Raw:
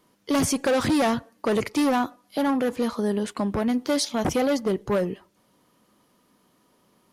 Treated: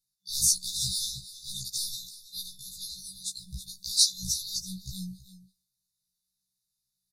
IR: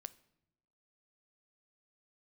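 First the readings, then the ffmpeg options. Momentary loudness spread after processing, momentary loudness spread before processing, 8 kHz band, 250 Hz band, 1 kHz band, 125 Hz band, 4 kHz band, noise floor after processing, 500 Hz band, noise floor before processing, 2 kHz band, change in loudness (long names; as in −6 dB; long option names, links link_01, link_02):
17 LU, 5 LU, +6.5 dB, −23.5 dB, below −40 dB, −9.0 dB, +5.0 dB, −84 dBFS, below −40 dB, −65 dBFS, below −40 dB, −4.5 dB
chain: -filter_complex "[0:a]agate=range=-18dB:threshold=-50dB:ratio=16:detection=peak,afftfilt=real='re*(1-between(b*sr/4096,190,3500))':imag='im*(1-between(b*sr/4096,190,3500))':win_size=4096:overlap=0.75,equalizer=frequency=120:width_type=o:width=2.2:gain=-14,asplit=2[link_01][link_02];[link_02]aecho=0:1:327:0.178[link_03];[link_01][link_03]amix=inputs=2:normalize=0,afftfilt=real='re*1.73*eq(mod(b,3),0)':imag='im*1.73*eq(mod(b,3),0)':win_size=2048:overlap=0.75,volume=9dB"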